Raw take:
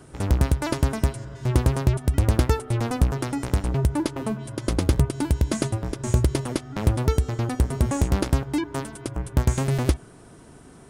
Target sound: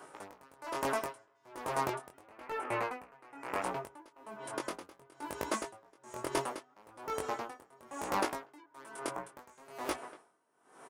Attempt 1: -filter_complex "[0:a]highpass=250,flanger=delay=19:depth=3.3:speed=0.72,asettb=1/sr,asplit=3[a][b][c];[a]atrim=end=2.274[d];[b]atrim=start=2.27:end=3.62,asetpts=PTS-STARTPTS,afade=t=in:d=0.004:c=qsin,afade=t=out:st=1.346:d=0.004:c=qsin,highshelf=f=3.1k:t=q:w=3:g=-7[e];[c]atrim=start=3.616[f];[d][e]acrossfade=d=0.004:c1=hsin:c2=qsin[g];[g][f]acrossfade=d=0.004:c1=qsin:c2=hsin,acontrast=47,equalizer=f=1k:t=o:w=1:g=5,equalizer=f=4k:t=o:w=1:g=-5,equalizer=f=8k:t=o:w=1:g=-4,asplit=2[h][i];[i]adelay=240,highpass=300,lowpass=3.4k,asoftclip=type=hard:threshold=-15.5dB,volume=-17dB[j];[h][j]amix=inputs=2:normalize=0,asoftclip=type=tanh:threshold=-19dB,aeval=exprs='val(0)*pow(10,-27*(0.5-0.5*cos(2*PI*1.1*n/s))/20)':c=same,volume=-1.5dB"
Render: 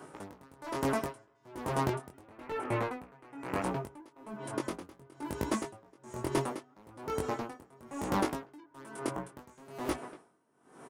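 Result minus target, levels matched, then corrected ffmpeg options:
250 Hz band +5.5 dB
-filter_complex "[0:a]highpass=520,flanger=delay=19:depth=3.3:speed=0.72,asettb=1/sr,asplit=3[a][b][c];[a]atrim=end=2.274[d];[b]atrim=start=2.27:end=3.62,asetpts=PTS-STARTPTS,afade=t=in:d=0.004:c=qsin,afade=t=out:st=1.346:d=0.004:c=qsin,highshelf=f=3.1k:t=q:w=3:g=-7[e];[c]atrim=start=3.616[f];[d][e]acrossfade=d=0.004:c1=hsin:c2=qsin[g];[g][f]acrossfade=d=0.004:c1=qsin:c2=hsin,acontrast=47,equalizer=f=1k:t=o:w=1:g=5,equalizer=f=4k:t=o:w=1:g=-5,equalizer=f=8k:t=o:w=1:g=-4,asplit=2[h][i];[i]adelay=240,highpass=300,lowpass=3.4k,asoftclip=type=hard:threshold=-15.5dB,volume=-17dB[j];[h][j]amix=inputs=2:normalize=0,asoftclip=type=tanh:threshold=-19dB,aeval=exprs='val(0)*pow(10,-27*(0.5-0.5*cos(2*PI*1.1*n/s))/20)':c=same,volume=-1.5dB"

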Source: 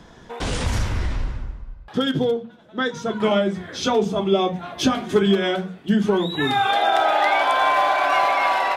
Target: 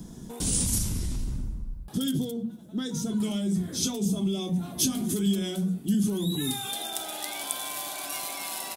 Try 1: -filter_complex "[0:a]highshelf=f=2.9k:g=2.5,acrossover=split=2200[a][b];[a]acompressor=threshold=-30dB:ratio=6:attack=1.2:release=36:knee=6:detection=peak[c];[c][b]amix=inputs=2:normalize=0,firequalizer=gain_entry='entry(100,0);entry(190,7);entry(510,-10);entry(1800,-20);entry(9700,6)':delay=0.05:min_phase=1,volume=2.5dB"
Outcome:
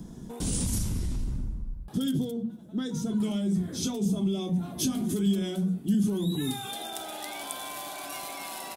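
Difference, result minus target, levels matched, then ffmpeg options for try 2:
8000 Hz band -5.0 dB
-filter_complex "[0:a]highshelf=f=2.9k:g=9.5,acrossover=split=2200[a][b];[a]acompressor=threshold=-30dB:ratio=6:attack=1.2:release=36:knee=6:detection=peak[c];[c][b]amix=inputs=2:normalize=0,firequalizer=gain_entry='entry(100,0);entry(190,7);entry(510,-10);entry(1800,-20);entry(9700,6)':delay=0.05:min_phase=1,volume=2.5dB"

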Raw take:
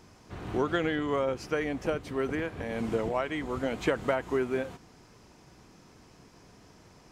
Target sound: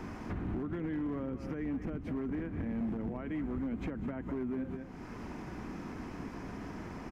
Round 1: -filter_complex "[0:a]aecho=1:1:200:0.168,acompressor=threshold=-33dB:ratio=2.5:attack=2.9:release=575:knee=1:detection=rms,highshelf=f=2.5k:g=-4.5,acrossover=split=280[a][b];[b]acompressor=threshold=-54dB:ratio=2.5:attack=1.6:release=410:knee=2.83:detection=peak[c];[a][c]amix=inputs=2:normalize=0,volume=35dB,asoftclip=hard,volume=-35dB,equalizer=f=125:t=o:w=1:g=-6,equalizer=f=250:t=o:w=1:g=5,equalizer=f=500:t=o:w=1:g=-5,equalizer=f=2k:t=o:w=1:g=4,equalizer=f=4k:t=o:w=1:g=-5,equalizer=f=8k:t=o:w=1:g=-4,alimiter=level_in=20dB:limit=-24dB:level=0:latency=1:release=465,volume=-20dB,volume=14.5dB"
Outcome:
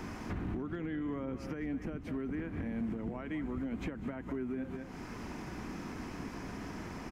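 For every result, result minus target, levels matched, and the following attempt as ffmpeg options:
4000 Hz band +5.5 dB; compressor: peak gain reduction +4.5 dB
-filter_complex "[0:a]aecho=1:1:200:0.168,acompressor=threshold=-33dB:ratio=2.5:attack=2.9:release=575:knee=1:detection=rms,highshelf=f=2.5k:g=-12,acrossover=split=280[a][b];[b]acompressor=threshold=-54dB:ratio=2.5:attack=1.6:release=410:knee=2.83:detection=peak[c];[a][c]amix=inputs=2:normalize=0,volume=35dB,asoftclip=hard,volume=-35dB,equalizer=f=125:t=o:w=1:g=-6,equalizer=f=250:t=o:w=1:g=5,equalizer=f=500:t=o:w=1:g=-5,equalizer=f=2k:t=o:w=1:g=4,equalizer=f=4k:t=o:w=1:g=-5,equalizer=f=8k:t=o:w=1:g=-4,alimiter=level_in=20dB:limit=-24dB:level=0:latency=1:release=465,volume=-20dB,volume=14.5dB"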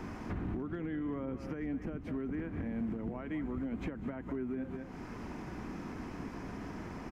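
compressor: peak gain reduction +4.5 dB
-filter_complex "[0:a]aecho=1:1:200:0.168,acompressor=threshold=-25.5dB:ratio=2.5:attack=2.9:release=575:knee=1:detection=rms,highshelf=f=2.5k:g=-12,acrossover=split=280[a][b];[b]acompressor=threshold=-54dB:ratio=2.5:attack=1.6:release=410:knee=2.83:detection=peak[c];[a][c]amix=inputs=2:normalize=0,volume=35dB,asoftclip=hard,volume=-35dB,equalizer=f=125:t=o:w=1:g=-6,equalizer=f=250:t=o:w=1:g=5,equalizer=f=500:t=o:w=1:g=-5,equalizer=f=2k:t=o:w=1:g=4,equalizer=f=4k:t=o:w=1:g=-5,equalizer=f=8k:t=o:w=1:g=-4,alimiter=level_in=20dB:limit=-24dB:level=0:latency=1:release=465,volume=-20dB,volume=14.5dB"

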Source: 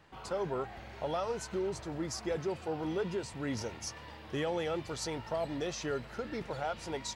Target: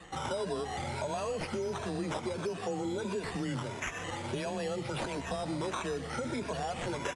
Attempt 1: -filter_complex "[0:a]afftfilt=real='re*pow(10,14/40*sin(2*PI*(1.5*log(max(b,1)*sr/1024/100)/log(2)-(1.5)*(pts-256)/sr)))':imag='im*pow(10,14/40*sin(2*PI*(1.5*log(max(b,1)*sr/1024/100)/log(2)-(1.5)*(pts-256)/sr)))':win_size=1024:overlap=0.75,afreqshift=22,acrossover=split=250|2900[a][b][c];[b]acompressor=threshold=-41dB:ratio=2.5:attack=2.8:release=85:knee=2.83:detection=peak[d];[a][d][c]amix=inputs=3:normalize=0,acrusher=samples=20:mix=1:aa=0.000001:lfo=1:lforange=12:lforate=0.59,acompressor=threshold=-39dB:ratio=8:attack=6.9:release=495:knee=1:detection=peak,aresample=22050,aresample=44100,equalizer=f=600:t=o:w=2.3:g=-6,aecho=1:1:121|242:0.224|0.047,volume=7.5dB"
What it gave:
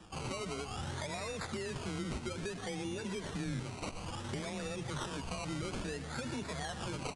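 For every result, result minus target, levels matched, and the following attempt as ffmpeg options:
500 Hz band -3.0 dB; decimation with a swept rate: distortion +5 dB
-filter_complex "[0:a]afftfilt=real='re*pow(10,14/40*sin(2*PI*(1.5*log(max(b,1)*sr/1024/100)/log(2)-(1.5)*(pts-256)/sr)))':imag='im*pow(10,14/40*sin(2*PI*(1.5*log(max(b,1)*sr/1024/100)/log(2)-(1.5)*(pts-256)/sr)))':win_size=1024:overlap=0.75,afreqshift=22,acrossover=split=250|2900[a][b][c];[b]acompressor=threshold=-41dB:ratio=2.5:attack=2.8:release=85:knee=2.83:detection=peak[d];[a][d][c]amix=inputs=3:normalize=0,acrusher=samples=20:mix=1:aa=0.000001:lfo=1:lforange=12:lforate=0.59,acompressor=threshold=-39dB:ratio=8:attack=6.9:release=495:knee=1:detection=peak,aresample=22050,aresample=44100,equalizer=f=600:t=o:w=2.3:g=2,aecho=1:1:121|242:0.224|0.047,volume=7.5dB"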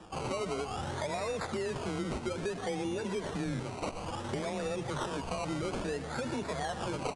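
decimation with a swept rate: distortion +5 dB
-filter_complex "[0:a]afftfilt=real='re*pow(10,14/40*sin(2*PI*(1.5*log(max(b,1)*sr/1024/100)/log(2)-(1.5)*(pts-256)/sr)))':imag='im*pow(10,14/40*sin(2*PI*(1.5*log(max(b,1)*sr/1024/100)/log(2)-(1.5)*(pts-256)/sr)))':win_size=1024:overlap=0.75,afreqshift=22,acrossover=split=250|2900[a][b][c];[b]acompressor=threshold=-41dB:ratio=2.5:attack=2.8:release=85:knee=2.83:detection=peak[d];[a][d][c]amix=inputs=3:normalize=0,acrusher=samples=8:mix=1:aa=0.000001:lfo=1:lforange=4.8:lforate=0.59,acompressor=threshold=-39dB:ratio=8:attack=6.9:release=495:knee=1:detection=peak,aresample=22050,aresample=44100,equalizer=f=600:t=o:w=2.3:g=2,aecho=1:1:121|242:0.224|0.047,volume=7.5dB"

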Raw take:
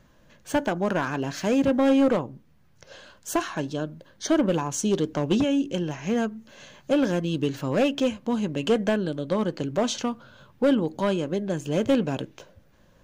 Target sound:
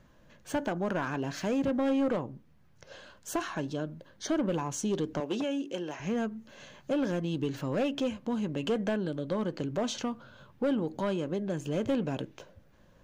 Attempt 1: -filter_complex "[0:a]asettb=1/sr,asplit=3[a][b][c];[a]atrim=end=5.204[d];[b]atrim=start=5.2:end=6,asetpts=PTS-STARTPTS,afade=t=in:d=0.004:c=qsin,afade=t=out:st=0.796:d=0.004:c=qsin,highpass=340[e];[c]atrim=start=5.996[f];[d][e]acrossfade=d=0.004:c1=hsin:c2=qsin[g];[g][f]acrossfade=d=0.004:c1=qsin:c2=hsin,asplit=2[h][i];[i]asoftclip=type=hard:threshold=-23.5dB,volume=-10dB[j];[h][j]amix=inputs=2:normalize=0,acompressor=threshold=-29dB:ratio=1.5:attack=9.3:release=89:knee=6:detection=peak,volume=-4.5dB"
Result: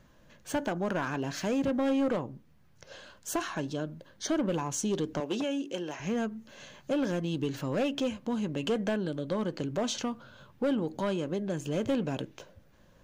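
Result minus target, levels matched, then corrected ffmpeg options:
8000 Hz band +3.0 dB
-filter_complex "[0:a]asettb=1/sr,asplit=3[a][b][c];[a]atrim=end=5.204[d];[b]atrim=start=5.2:end=6,asetpts=PTS-STARTPTS,afade=t=in:d=0.004:c=qsin,afade=t=out:st=0.796:d=0.004:c=qsin,highpass=340[e];[c]atrim=start=5.996[f];[d][e]acrossfade=d=0.004:c1=hsin:c2=qsin[g];[g][f]acrossfade=d=0.004:c1=qsin:c2=hsin,asplit=2[h][i];[i]asoftclip=type=hard:threshold=-23.5dB,volume=-10dB[j];[h][j]amix=inputs=2:normalize=0,acompressor=threshold=-29dB:ratio=1.5:attack=9.3:release=89:knee=6:detection=peak,highshelf=f=3.4k:g=-4,volume=-4.5dB"

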